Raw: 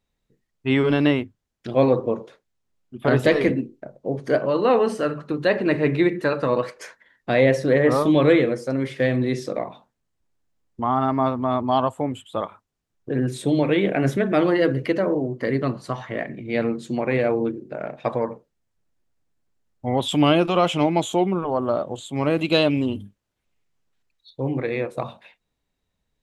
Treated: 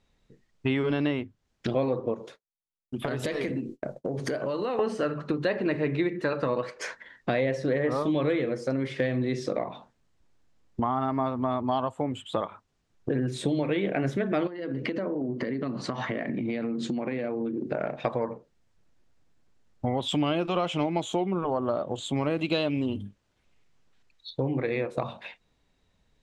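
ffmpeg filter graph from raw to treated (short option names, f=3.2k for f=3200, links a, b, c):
-filter_complex "[0:a]asettb=1/sr,asplit=3[a][b][c];[a]atrim=end=2.144[d];[b]atrim=start=2.14:end=4.79,asetpts=PTS-STARTPTS,afade=t=in:d=0.004:c=qsin,afade=t=out:st=2.646:d=0.004:c=qsin,agate=range=-33dB:threshold=-46dB:ratio=3:release=100:detection=peak,aemphasis=mode=production:type=50fm,acompressor=threshold=-33dB:ratio=4:attack=3.2:release=140:knee=1:detection=peak[e];[c]atrim=start=4.786[f];[d][e]acrossfade=d=0.004:c1=hsin:c2=qsin[g];[g][f]acrossfade=d=0.004:c1=qsin:c2=hsin,asettb=1/sr,asplit=3[h][i][j];[h]atrim=end=14.474[k];[i]atrim=start=14.47:end=17.67,asetpts=PTS-STARTPTS,afade=t=in:d=0.004:c=qsin,afade=t=out:st=3.196:d=0.004:c=qsin,equalizer=f=250:w=2.2:g=6.5,acompressor=threshold=-31dB:ratio=10:attack=3.2:release=140:knee=1:detection=peak,highpass=120,lowpass=7.2k[l];[j]atrim=start=17.666[m];[k][l]acrossfade=d=0.004:c1=hsin:c2=qsin[n];[n][m]acrossfade=d=0.004:c1=qsin:c2=hsin,lowpass=7k,acompressor=threshold=-35dB:ratio=4,volume=8dB"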